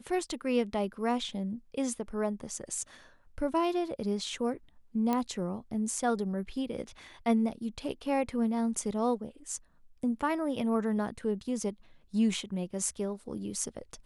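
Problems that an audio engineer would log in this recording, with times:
0:05.13: click −17 dBFS

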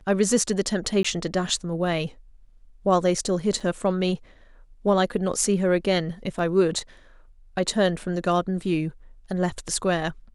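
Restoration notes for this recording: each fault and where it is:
0:01.03–0:01.04: drop-out 15 ms
0:03.60: drop-out 4.5 ms
0:06.39: drop-out 2.1 ms

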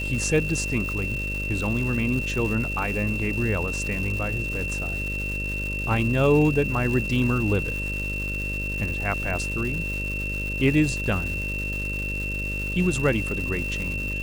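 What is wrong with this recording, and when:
mains buzz 50 Hz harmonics 12 −31 dBFS
surface crackle 460 per second −31 dBFS
whistle 2,700 Hz −29 dBFS

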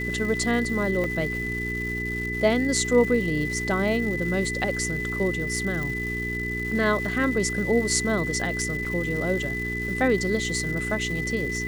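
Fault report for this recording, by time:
surface crackle 560 per second −34 dBFS
mains hum 60 Hz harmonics 7 −32 dBFS
whistle 2,000 Hz −29 dBFS
0:01.04: drop-out 2.6 ms
0:05.83: click
0:08.85: drop-out 3.5 ms

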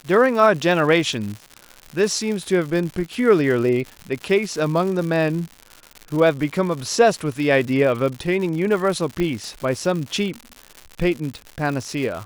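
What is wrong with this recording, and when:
surface crackle 170 per second −27 dBFS
0:09.20: click −12 dBFS

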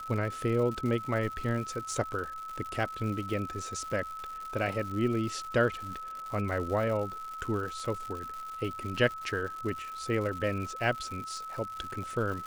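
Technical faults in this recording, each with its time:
surface crackle 200 per second −37 dBFS
whistle 1,300 Hz −38 dBFS

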